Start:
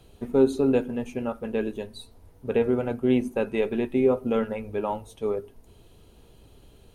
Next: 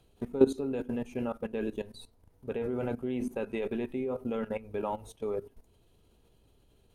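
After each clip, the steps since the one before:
output level in coarse steps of 16 dB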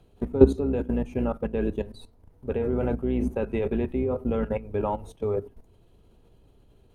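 sub-octave generator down 2 octaves, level −3 dB
high-shelf EQ 2,400 Hz −9.5 dB
level +6.5 dB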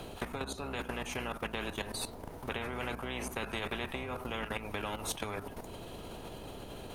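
downward compressor 4 to 1, threshold −31 dBFS, peak gain reduction 19 dB
every bin compressed towards the loudest bin 4 to 1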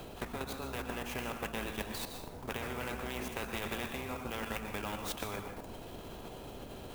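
convolution reverb RT60 0.60 s, pre-delay 114 ms, DRR 6 dB
converter with an unsteady clock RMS 0.029 ms
level −2 dB

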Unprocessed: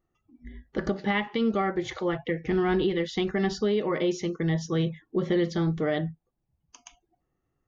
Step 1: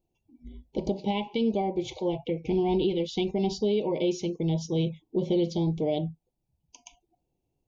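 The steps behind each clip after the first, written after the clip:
Chebyshev band-stop filter 980–2,300 Hz, order 4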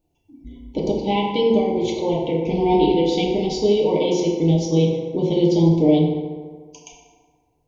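feedback delay network reverb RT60 1.7 s, low-frequency decay 0.85×, high-frequency decay 0.5×, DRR −2.5 dB
level +5 dB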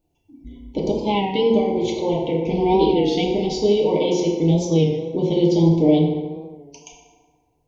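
wow of a warped record 33 1/3 rpm, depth 100 cents

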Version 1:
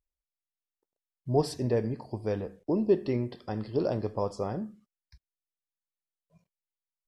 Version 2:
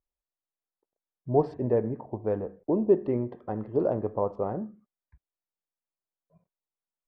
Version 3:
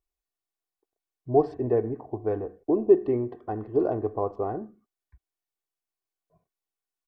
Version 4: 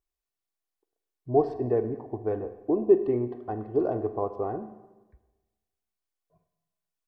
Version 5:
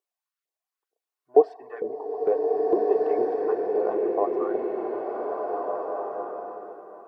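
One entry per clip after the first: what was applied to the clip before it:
adaptive Wiener filter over 9 samples; low-pass filter 1,100 Hz 12 dB per octave; low-shelf EQ 240 Hz −8 dB; level +5 dB
comb filter 2.7 ms, depth 60%
four-comb reverb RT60 1.2 s, combs from 33 ms, DRR 11.5 dB; level −1.5 dB
auto-filter high-pass saw up 2.2 Hz 430–1,600 Hz; reverb reduction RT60 0.59 s; slow-attack reverb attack 1,760 ms, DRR −2.5 dB

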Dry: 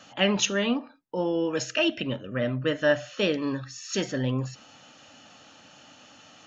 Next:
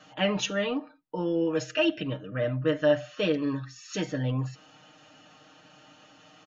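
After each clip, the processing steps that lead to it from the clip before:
high-shelf EQ 5,300 Hz −11 dB
comb filter 6.5 ms, depth 82%
level −3.5 dB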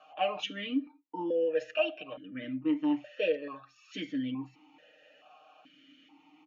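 low-shelf EQ 380 Hz −6.5 dB
formant filter that steps through the vowels 2.3 Hz
level +8 dB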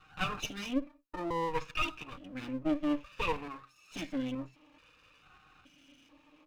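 lower of the sound and its delayed copy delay 0.76 ms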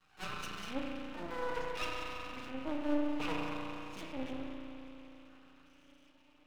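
spring reverb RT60 3.4 s, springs 34 ms, chirp 50 ms, DRR −2 dB
half-wave rectification
level −4 dB

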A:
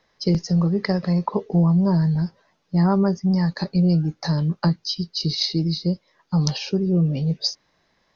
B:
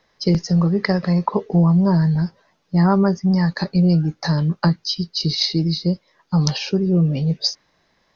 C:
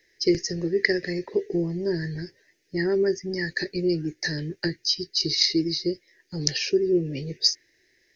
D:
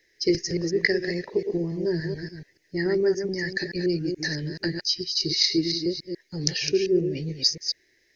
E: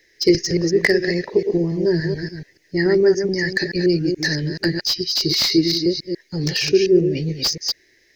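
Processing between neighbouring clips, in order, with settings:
dynamic equaliser 1,600 Hz, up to +4 dB, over −41 dBFS, Q 0.96; level +2.5 dB
drawn EQ curve 120 Hz 0 dB, 190 Hz −12 dB, 360 Hz +12 dB, 580 Hz −5 dB, 1,200 Hz −23 dB, 1,800 Hz +13 dB, 3,400 Hz +1 dB, 5,200 Hz +9 dB, 9,300 Hz +14 dB; level −7.5 dB
delay that plays each chunk backwards 143 ms, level −6 dB; level −1 dB
slew-rate limiting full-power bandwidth 310 Hz; level +7.5 dB

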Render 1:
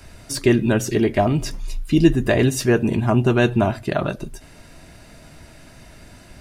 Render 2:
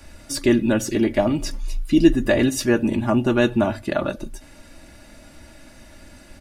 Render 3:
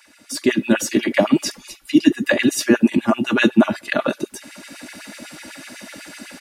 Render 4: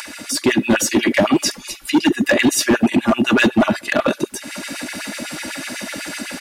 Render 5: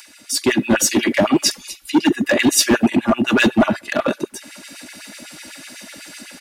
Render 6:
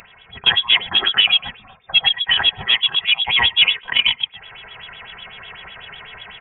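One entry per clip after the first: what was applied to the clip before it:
mains-hum notches 50/100 Hz; comb filter 3.5 ms, depth 57%; level −2 dB
parametric band 580 Hz −7 dB 2.2 octaves; automatic gain control gain up to 14 dB; auto-filter high-pass sine 8 Hz 200–2,500 Hz; level −2 dB
in parallel at 0 dB: brickwall limiter −13 dBFS, peak gain reduction 11.5 dB; on the sum: upward compression, threshold −22 dBFS; hard clipping −9 dBFS, distortion −11 dB
multiband upward and downward expander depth 70%; level −1 dB
speech leveller 2 s; graphic EQ with 15 bands 160 Hz −8 dB, 1,000 Hz +9 dB, 2,500 Hz −4 dB; voice inversion scrambler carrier 3,600 Hz; level −1 dB

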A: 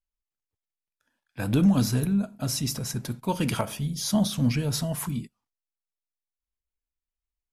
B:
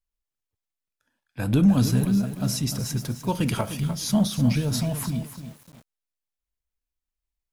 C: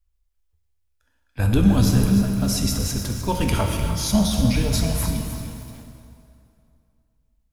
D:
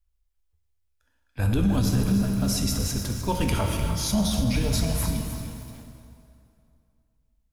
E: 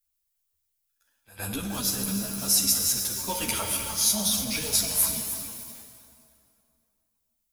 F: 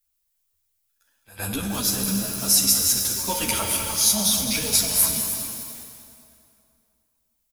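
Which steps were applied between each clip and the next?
low-shelf EQ 220 Hz +4 dB; feedback echo at a low word length 301 ms, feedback 35%, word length 7 bits, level −10 dB
low shelf with overshoot 100 Hz +12.5 dB, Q 3; dense smooth reverb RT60 2.5 s, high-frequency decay 0.8×, DRR 3 dB; level +3 dB
brickwall limiter −11.5 dBFS, peak gain reduction 6 dB; level −2.5 dB
RIAA equalisation recording; echo ahead of the sound 113 ms −18 dB; string-ensemble chorus
repeating echo 205 ms, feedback 42%, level −11 dB; level +4 dB

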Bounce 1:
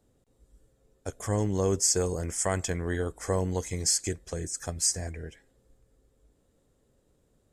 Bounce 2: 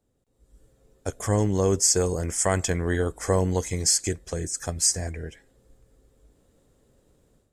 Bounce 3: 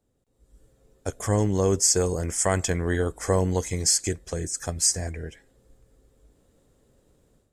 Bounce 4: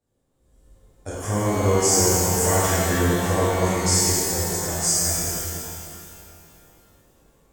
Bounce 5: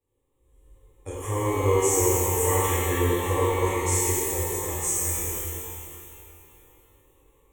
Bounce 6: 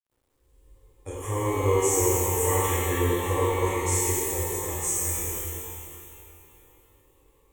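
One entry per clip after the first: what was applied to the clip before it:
automatic gain control gain up to 12 dB; level −6 dB
no processing that can be heard
reverb with rising layers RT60 2.5 s, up +12 semitones, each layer −8 dB, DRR −10.5 dB; level −7 dB
phaser with its sweep stopped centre 1,000 Hz, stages 8
bit reduction 12 bits; level −1 dB

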